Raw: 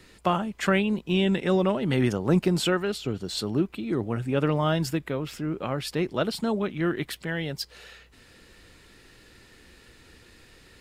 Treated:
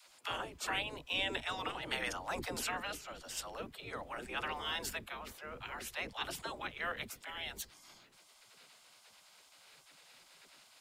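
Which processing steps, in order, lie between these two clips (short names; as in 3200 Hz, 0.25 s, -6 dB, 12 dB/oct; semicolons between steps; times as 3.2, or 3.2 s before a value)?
spectral gate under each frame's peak -15 dB weak; dispersion lows, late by 60 ms, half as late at 330 Hz; gain -2 dB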